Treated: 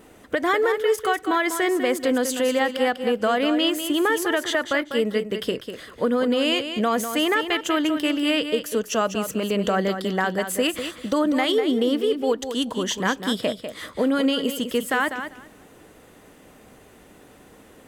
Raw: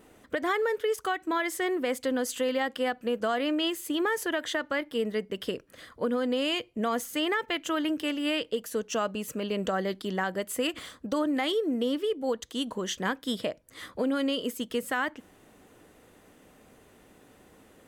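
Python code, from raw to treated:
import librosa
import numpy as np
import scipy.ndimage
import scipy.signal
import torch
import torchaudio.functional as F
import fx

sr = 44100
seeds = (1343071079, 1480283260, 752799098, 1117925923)

y = fx.echo_feedback(x, sr, ms=197, feedback_pct=17, wet_db=-9.0)
y = F.gain(torch.from_numpy(y), 6.5).numpy()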